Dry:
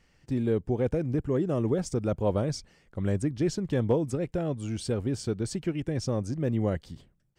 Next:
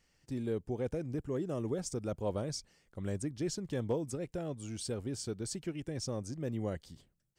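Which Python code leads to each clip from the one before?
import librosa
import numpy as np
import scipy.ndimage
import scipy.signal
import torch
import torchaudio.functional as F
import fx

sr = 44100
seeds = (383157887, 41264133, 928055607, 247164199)

y = fx.bass_treble(x, sr, bass_db=-2, treble_db=8)
y = y * 10.0 ** (-8.0 / 20.0)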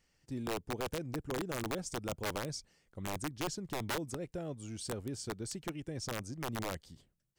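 y = (np.mod(10.0 ** (27.5 / 20.0) * x + 1.0, 2.0) - 1.0) / 10.0 ** (27.5 / 20.0)
y = y * 10.0 ** (-2.0 / 20.0)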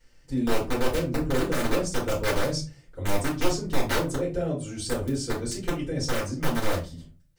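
y = fx.room_shoebox(x, sr, seeds[0], volume_m3=120.0, walls='furnished', distance_m=4.8)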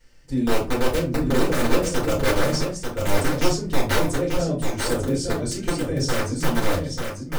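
y = x + 10.0 ** (-5.5 / 20.0) * np.pad(x, (int(891 * sr / 1000.0), 0))[:len(x)]
y = y * 10.0 ** (3.5 / 20.0)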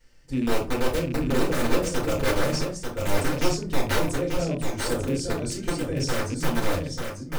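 y = fx.rattle_buzz(x, sr, strikes_db=-25.0, level_db=-28.0)
y = y * 10.0 ** (-3.0 / 20.0)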